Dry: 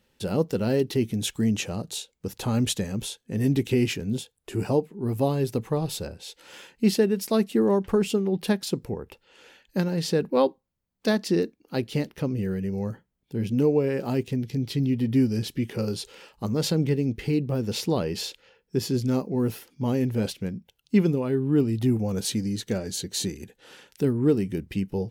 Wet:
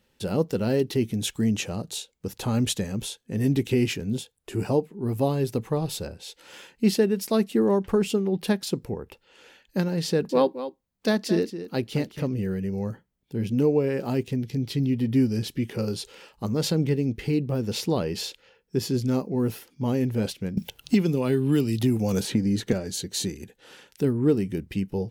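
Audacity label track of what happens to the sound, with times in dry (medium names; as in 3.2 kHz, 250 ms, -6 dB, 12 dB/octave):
10.070000	12.360000	delay 221 ms -12 dB
20.570000	22.730000	three bands compressed up and down depth 100%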